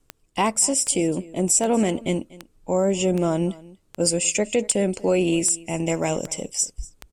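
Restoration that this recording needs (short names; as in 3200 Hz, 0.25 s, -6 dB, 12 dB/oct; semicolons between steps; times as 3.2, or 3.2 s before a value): de-click; inverse comb 0.24 s -21 dB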